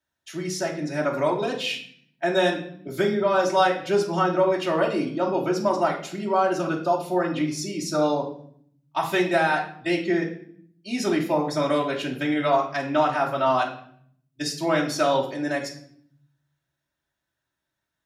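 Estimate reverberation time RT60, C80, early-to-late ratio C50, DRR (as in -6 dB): 0.60 s, 12.0 dB, 8.5 dB, -4.5 dB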